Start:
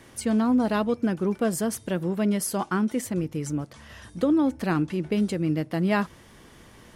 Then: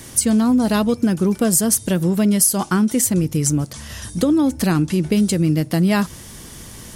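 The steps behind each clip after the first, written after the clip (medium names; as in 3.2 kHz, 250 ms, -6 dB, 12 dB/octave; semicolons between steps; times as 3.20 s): tone controls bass +7 dB, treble +15 dB; compression 3:1, threshold -21 dBFS, peak gain reduction 7.5 dB; trim +7 dB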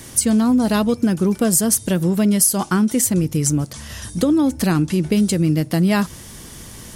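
no audible change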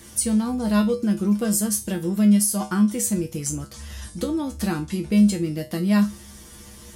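feedback comb 69 Hz, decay 0.24 s, harmonics odd, mix 90%; trim +2.5 dB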